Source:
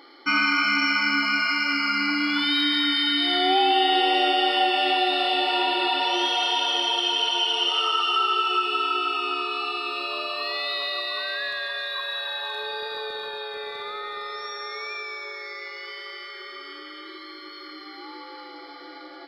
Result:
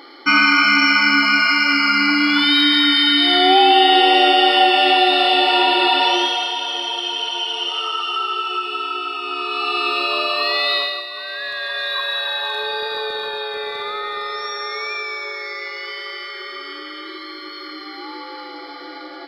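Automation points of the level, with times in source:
0:06.08 +8 dB
0:06.54 0 dB
0:09.21 0 dB
0:09.82 +9.5 dB
0:10.77 +9.5 dB
0:11.09 −2 dB
0:11.90 +7.5 dB

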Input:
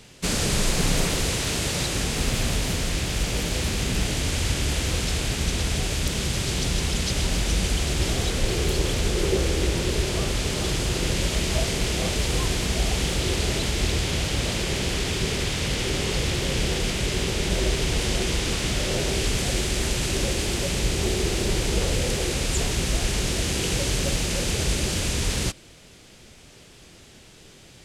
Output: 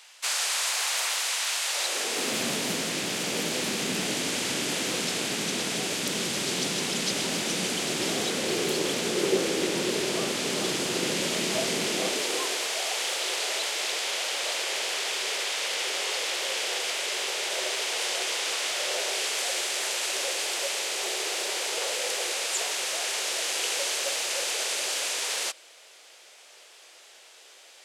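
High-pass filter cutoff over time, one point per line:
high-pass filter 24 dB per octave
0:01.65 790 Hz
0:02.42 200 Hz
0:11.86 200 Hz
0:12.75 540 Hz

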